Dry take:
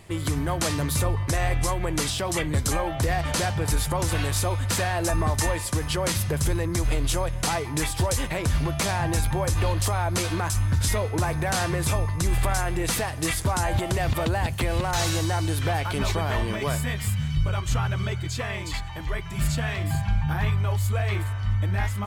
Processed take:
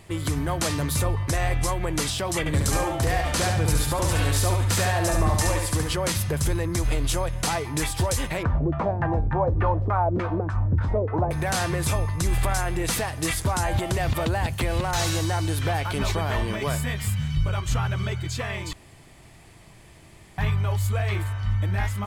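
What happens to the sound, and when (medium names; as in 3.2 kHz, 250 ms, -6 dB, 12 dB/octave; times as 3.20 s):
2.39–5.94 s: feedback delay 70 ms, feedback 36%, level -4 dB
8.43–11.31 s: LFO low-pass saw down 3.4 Hz 310–1600 Hz
18.73–20.38 s: room tone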